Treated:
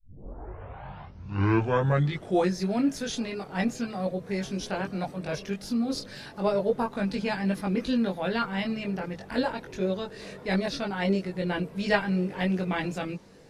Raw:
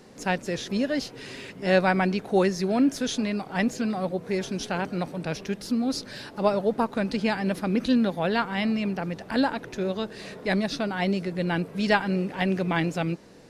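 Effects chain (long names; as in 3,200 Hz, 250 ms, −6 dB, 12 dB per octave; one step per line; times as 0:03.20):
turntable start at the beginning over 2.60 s
multi-voice chorus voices 6, 0.39 Hz, delay 21 ms, depth 1.3 ms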